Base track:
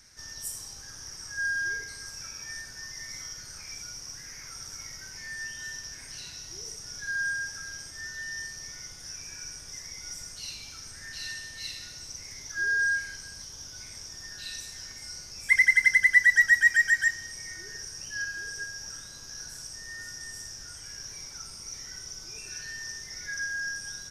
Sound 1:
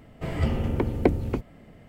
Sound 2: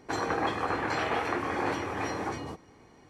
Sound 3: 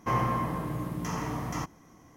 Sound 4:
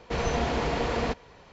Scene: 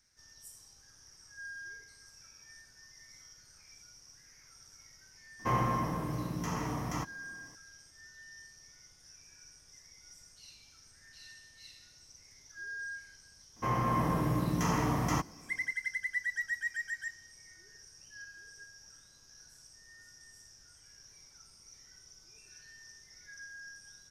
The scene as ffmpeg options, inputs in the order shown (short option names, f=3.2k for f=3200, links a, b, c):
-filter_complex "[3:a]asplit=2[a][b];[0:a]volume=-15.5dB[c];[b]dynaudnorm=f=110:g=7:m=8dB[d];[a]atrim=end=2.16,asetpts=PTS-STARTPTS,volume=-2.5dB,afade=t=in:d=0.004:c=hsin,afade=t=out:st=2.156:d=0.004:c=hsin,adelay=5390[e];[d]atrim=end=2.16,asetpts=PTS-STARTPTS,volume=-5dB,afade=t=in:d=0.004:c=hsin,afade=t=out:st=2.156:d=0.004:c=hsin,adelay=13560[f];[c][e][f]amix=inputs=3:normalize=0"